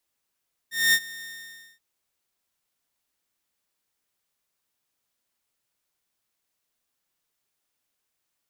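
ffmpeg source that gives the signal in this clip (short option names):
-f lavfi -i "aevalsrc='0.224*(2*mod(1830*t,1)-1)':d=1.081:s=44100,afade=t=in:d=0.223,afade=t=out:st=0.223:d=0.059:silence=0.0891,afade=t=out:st=0.53:d=0.551"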